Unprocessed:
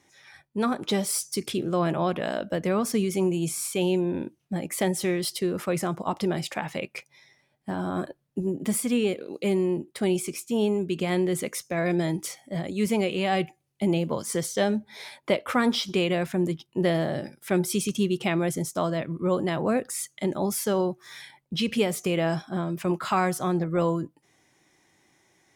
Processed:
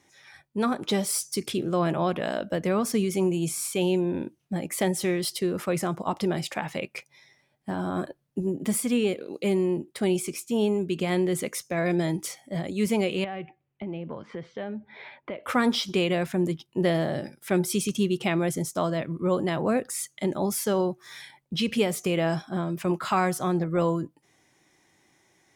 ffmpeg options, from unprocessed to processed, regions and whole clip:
ffmpeg -i in.wav -filter_complex "[0:a]asettb=1/sr,asplit=3[link_01][link_02][link_03];[link_01]atrim=end=13.244[link_04];[link_02]atrim=start=13.24:end=15.44,asetpts=PTS-STARTPTS,afade=type=in:duration=0.004:curve=qsin,afade=type=out:start_time=2.196:duration=0.004:curve=qsin,lowpass=frequency=2800:width=0.5412,lowpass=frequency=2800:width=1.3066,acompressor=threshold=-34dB:ratio=3:attack=3.2:release=140:knee=1:detection=peak[link_05];[link_03]atrim=start=15.436[link_06];[link_04][link_05]acrossfade=duration=0.004:curve1=hsin:curve2=qsin[link_07];[link_07][link_06]acrossfade=duration=0.004:curve1=qsin:curve2=hsin" out.wav

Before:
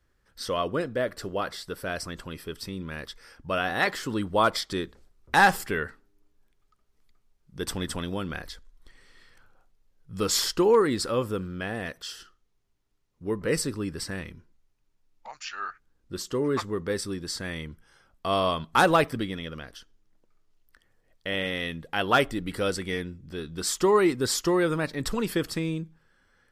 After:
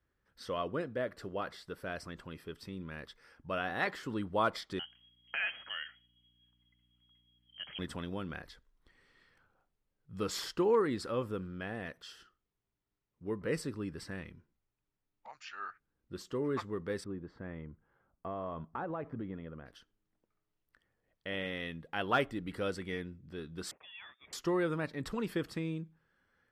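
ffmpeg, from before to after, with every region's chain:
ffmpeg -i in.wav -filter_complex "[0:a]asettb=1/sr,asplit=3[link_01][link_02][link_03];[link_01]atrim=end=4.794[link_04];[link_02]atrim=start=4.79:end=7.79,asetpts=PTS-STARTPTS,afade=type=in:duration=0.004:curve=qsin,afade=type=out:start_time=2.996:duration=0.004:curve=qsin,acompressor=threshold=-28dB:ratio=2:attack=3.2:release=140:knee=1:detection=peak,lowpass=frequency=2800:width_type=q:width=0.5098,lowpass=frequency=2800:width_type=q:width=0.6013,lowpass=frequency=2800:width_type=q:width=0.9,lowpass=frequency=2800:width_type=q:width=2.563,afreqshift=-3300,aeval=exprs='val(0)+0.000631*(sin(2*PI*60*n/s)+sin(2*PI*2*60*n/s)/2+sin(2*PI*3*60*n/s)/3+sin(2*PI*4*60*n/s)/4+sin(2*PI*5*60*n/s)/5)':channel_layout=same[link_05];[link_03]atrim=start=7.786[link_06];[link_04][link_05]acrossfade=duration=0.004:curve1=hsin:curve2=qsin[link_07];[link_07][link_06]acrossfade=duration=0.004:curve1=qsin:curve2=hsin,asettb=1/sr,asplit=3[link_08][link_09][link_10];[link_08]atrim=end=17.044[link_11];[link_09]atrim=start=17.04:end=19.66,asetpts=PTS-STARTPTS,afade=type=in:duration=0.004:curve=qsin,afade=type=out:start_time=2.616:duration=0.004:curve=qsin,lowpass=1200,acompressor=threshold=-27dB:ratio=6:attack=3.2:release=140:knee=1:detection=peak[link_12];[link_10]atrim=start=19.656[link_13];[link_11][link_12]acrossfade=duration=0.004:curve1=hsin:curve2=qsin[link_14];[link_14][link_13]acrossfade=duration=0.004:curve1=qsin:curve2=hsin,asettb=1/sr,asplit=3[link_15][link_16][link_17];[link_15]atrim=end=23.714[link_18];[link_16]atrim=start=23.71:end=24.33,asetpts=PTS-STARTPTS,afade=type=in:duration=0.004:curve=qsin,afade=type=out:start_time=0.616:duration=0.004:curve=qsin,aderivative,bandreject=frequency=860:width=7.5,lowpass=frequency=3200:width_type=q:width=0.5098,lowpass=frequency=3200:width_type=q:width=0.6013,lowpass=frequency=3200:width_type=q:width=0.9,lowpass=frequency=3200:width_type=q:width=2.563,afreqshift=-3800[link_19];[link_17]atrim=start=24.326[link_20];[link_18][link_19]acrossfade=duration=0.004:curve1=hsin:curve2=qsin[link_21];[link_21][link_20]acrossfade=duration=0.004:curve1=qsin:curve2=hsin,highpass=frequency=81:poles=1,bass=frequency=250:gain=2,treble=frequency=4000:gain=-9,volume=-8dB" out.wav

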